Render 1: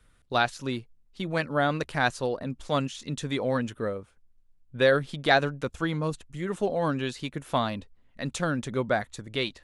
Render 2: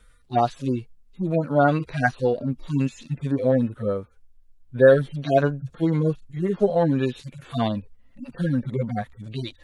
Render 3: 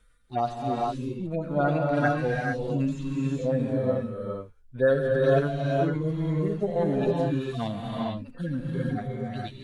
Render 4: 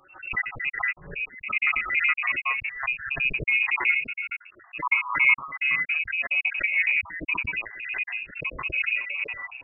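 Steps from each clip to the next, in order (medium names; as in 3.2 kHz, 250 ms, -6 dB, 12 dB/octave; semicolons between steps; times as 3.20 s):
harmonic-percussive separation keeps harmonic; trim +8 dB
gated-style reverb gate 480 ms rising, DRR -3 dB; trim -7.5 dB
random holes in the spectrogram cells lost 57%; frequency inversion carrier 2.7 kHz; swell ahead of each attack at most 100 dB/s; trim +2.5 dB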